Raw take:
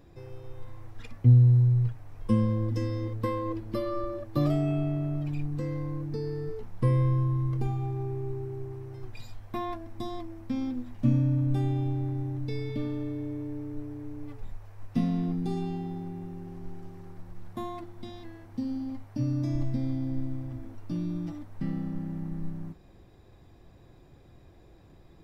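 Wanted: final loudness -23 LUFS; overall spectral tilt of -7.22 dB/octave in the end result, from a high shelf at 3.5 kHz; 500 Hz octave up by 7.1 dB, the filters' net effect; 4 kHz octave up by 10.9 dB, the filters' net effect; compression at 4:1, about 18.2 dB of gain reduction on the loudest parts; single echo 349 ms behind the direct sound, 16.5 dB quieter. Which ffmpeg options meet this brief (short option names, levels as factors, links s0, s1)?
-af "equalizer=f=500:t=o:g=8.5,highshelf=f=3500:g=7.5,equalizer=f=4000:t=o:g=8,acompressor=threshold=0.0158:ratio=4,aecho=1:1:349:0.15,volume=6.68"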